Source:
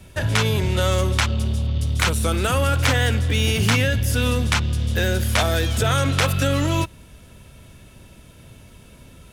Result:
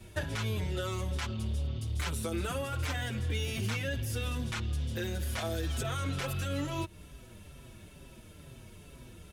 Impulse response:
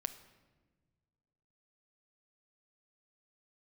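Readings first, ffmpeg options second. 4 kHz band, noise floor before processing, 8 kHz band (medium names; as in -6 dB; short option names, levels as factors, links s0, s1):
-15.5 dB, -47 dBFS, -14.5 dB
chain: -filter_complex "[0:a]alimiter=limit=0.251:level=0:latency=1:release=59,equalizer=f=360:t=o:w=0.33:g=5.5,acompressor=threshold=0.0562:ratio=6,asplit=2[s0][s1];[s1]adelay=5.8,afreqshift=-2.2[s2];[s0][s2]amix=inputs=2:normalize=1,volume=0.75"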